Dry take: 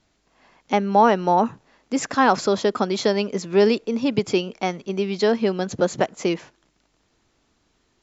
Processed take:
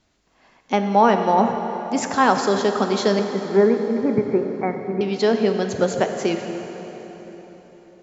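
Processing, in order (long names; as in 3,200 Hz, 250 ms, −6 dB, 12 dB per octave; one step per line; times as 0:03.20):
0:03.19–0:05.01: Butterworth low-pass 2,200 Hz 96 dB per octave
dense smooth reverb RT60 4.4 s, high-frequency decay 0.75×, DRR 5 dB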